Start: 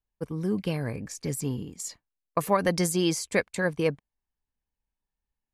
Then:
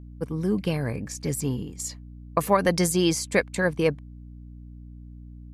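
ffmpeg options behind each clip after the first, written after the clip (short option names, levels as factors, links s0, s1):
-af "aeval=exprs='val(0)+0.00631*(sin(2*PI*60*n/s)+sin(2*PI*2*60*n/s)/2+sin(2*PI*3*60*n/s)/3+sin(2*PI*4*60*n/s)/4+sin(2*PI*5*60*n/s)/5)':c=same,volume=1.41"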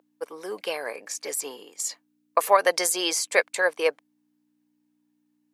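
-af "highpass=f=500:w=0.5412,highpass=f=500:w=1.3066,volume=1.5"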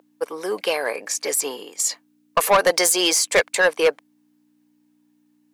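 -af "asoftclip=type=tanh:threshold=0.119,volume=2.66"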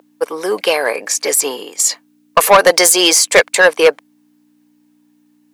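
-af "lowshelf=f=140:g=-3.5,volume=2.51"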